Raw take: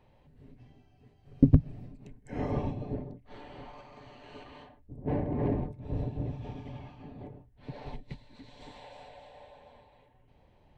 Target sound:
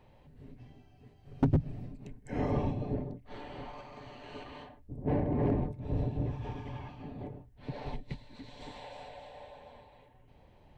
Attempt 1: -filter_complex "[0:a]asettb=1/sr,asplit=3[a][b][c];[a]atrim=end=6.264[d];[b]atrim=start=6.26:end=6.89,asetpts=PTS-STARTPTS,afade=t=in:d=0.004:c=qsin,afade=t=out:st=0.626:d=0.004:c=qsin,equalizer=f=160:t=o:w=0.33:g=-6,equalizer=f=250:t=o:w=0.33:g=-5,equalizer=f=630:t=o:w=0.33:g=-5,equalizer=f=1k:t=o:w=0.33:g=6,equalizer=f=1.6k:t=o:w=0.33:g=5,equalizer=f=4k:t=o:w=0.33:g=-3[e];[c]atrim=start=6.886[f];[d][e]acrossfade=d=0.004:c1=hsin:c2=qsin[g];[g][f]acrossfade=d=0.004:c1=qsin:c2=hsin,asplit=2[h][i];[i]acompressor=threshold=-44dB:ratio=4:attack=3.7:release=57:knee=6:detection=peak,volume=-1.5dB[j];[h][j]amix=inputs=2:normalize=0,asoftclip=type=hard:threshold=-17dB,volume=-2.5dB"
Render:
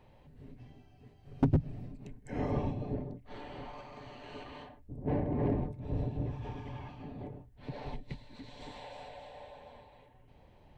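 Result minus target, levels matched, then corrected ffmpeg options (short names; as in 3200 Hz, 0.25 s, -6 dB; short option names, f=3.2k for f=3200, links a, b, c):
compressor: peak gain reduction +8.5 dB
-filter_complex "[0:a]asettb=1/sr,asplit=3[a][b][c];[a]atrim=end=6.264[d];[b]atrim=start=6.26:end=6.89,asetpts=PTS-STARTPTS,afade=t=in:d=0.004:c=qsin,afade=t=out:st=0.626:d=0.004:c=qsin,equalizer=f=160:t=o:w=0.33:g=-6,equalizer=f=250:t=o:w=0.33:g=-5,equalizer=f=630:t=o:w=0.33:g=-5,equalizer=f=1k:t=o:w=0.33:g=6,equalizer=f=1.6k:t=o:w=0.33:g=5,equalizer=f=4k:t=o:w=0.33:g=-3[e];[c]atrim=start=6.886[f];[d][e]acrossfade=d=0.004:c1=hsin:c2=qsin[g];[g][f]acrossfade=d=0.004:c1=qsin:c2=hsin,asplit=2[h][i];[i]acompressor=threshold=-32.5dB:ratio=4:attack=3.7:release=57:knee=6:detection=peak,volume=-1.5dB[j];[h][j]amix=inputs=2:normalize=0,asoftclip=type=hard:threshold=-17dB,volume=-2.5dB"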